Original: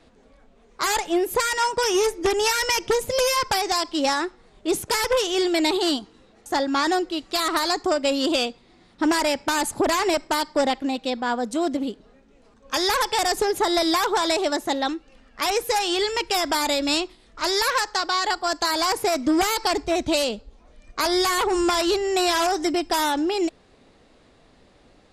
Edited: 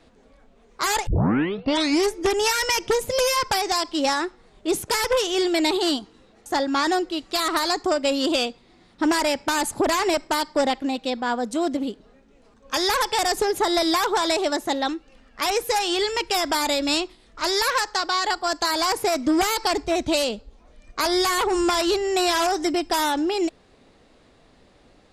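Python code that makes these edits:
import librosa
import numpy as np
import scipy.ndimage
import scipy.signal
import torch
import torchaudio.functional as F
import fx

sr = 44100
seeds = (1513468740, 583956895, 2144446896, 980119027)

y = fx.edit(x, sr, fx.tape_start(start_s=1.07, length_s=1.08), tone=tone)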